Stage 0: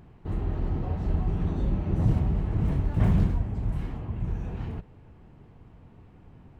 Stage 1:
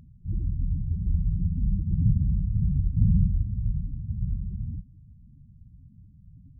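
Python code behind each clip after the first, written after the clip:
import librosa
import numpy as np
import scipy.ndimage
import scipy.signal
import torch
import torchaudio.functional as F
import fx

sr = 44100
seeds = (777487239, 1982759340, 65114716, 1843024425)

y = fx.lower_of_two(x, sr, delay_ms=0.87)
y = fx.lowpass(y, sr, hz=1000.0, slope=6)
y = fx.spec_topn(y, sr, count=8)
y = y * librosa.db_to_amplitude(2.0)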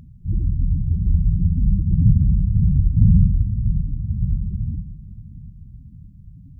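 y = fx.echo_feedback(x, sr, ms=574, feedback_pct=52, wet_db=-16)
y = y * librosa.db_to_amplitude(7.5)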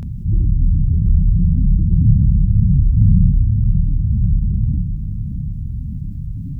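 y = fx.doubler(x, sr, ms=28.0, db=-3.0)
y = fx.env_flatten(y, sr, amount_pct=50)
y = y * librosa.db_to_amplitude(-2.0)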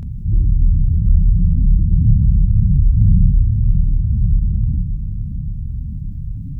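y = fx.low_shelf(x, sr, hz=100.0, db=7.5)
y = y * librosa.db_to_amplitude(-4.5)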